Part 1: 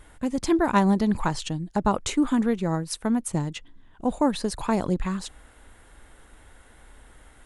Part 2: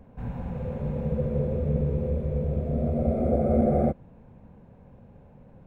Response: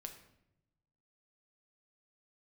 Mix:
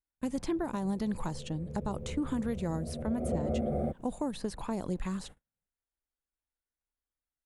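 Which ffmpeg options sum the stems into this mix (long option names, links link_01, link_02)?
-filter_complex "[0:a]alimiter=limit=-16dB:level=0:latency=1:release=237,volume=-5.5dB[link_01];[1:a]volume=-6dB,afade=type=in:start_time=1.54:duration=0.54:silence=0.421697,afade=type=in:start_time=3.01:duration=0.35:silence=0.446684[link_02];[link_01][link_02]amix=inputs=2:normalize=0,agate=range=-42dB:threshold=-45dB:ratio=16:detection=peak,highshelf=frequency=7700:gain=8.5,acrossover=split=800|3700[link_03][link_04][link_05];[link_03]acompressor=threshold=-28dB:ratio=4[link_06];[link_04]acompressor=threshold=-46dB:ratio=4[link_07];[link_05]acompressor=threshold=-51dB:ratio=4[link_08];[link_06][link_07][link_08]amix=inputs=3:normalize=0"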